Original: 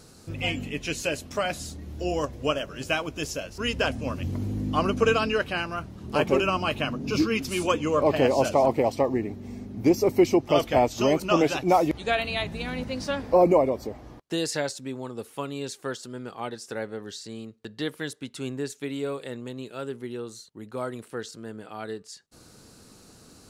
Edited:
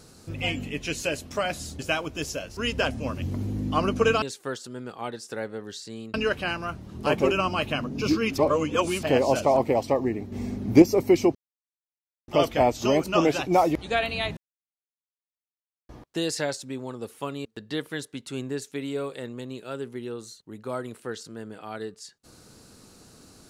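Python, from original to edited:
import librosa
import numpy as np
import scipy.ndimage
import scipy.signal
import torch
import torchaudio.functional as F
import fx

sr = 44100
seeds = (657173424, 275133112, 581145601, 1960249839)

y = fx.edit(x, sr, fx.cut(start_s=1.79, length_s=1.01),
    fx.reverse_span(start_s=7.47, length_s=0.65),
    fx.clip_gain(start_s=9.41, length_s=0.5, db=6.5),
    fx.insert_silence(at_s=10.44, length_s=0.93),
    fx.silence(start_s=12.53, length_s=1.52),
    fx.move(start_s=15.61, length_s=1.92, to_s=5.23), tone=tone)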